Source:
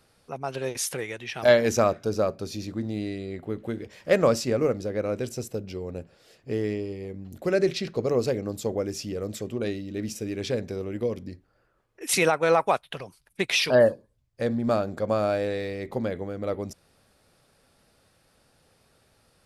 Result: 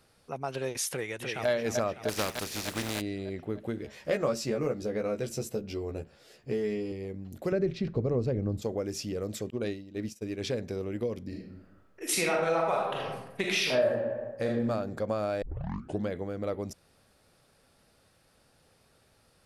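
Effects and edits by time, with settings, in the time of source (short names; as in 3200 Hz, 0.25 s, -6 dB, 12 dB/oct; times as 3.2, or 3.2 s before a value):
0.89–1.49 echo throw 0.3 s, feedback 60%, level -4.5 dB
2.08–3 spectral contrast lowered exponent 0.43
3.83–6.92 doubler 14 ms -3 dB
7.52–8.62 RIAA curve playback
9.5–10.42 expander -29 dBFS
11.25–14.6 reverb throw, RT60 0.93 s, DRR -2.5 dB
15.42 tape start 0.66 s
whole clip: compressor 2.5:1, threshold -27 dBFS; gain -1.5 dB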